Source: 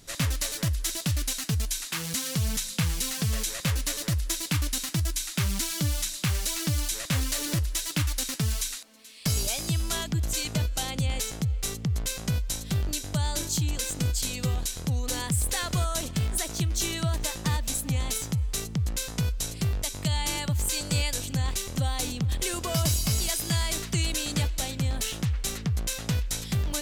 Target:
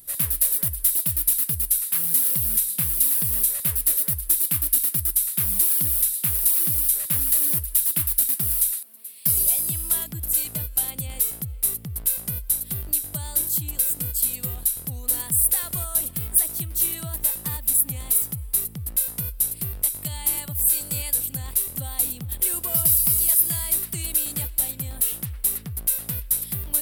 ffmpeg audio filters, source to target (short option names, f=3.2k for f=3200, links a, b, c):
-af "aexciter=amount=9.8:drive=9.3:freq=9.5k,volume=-6.5dB"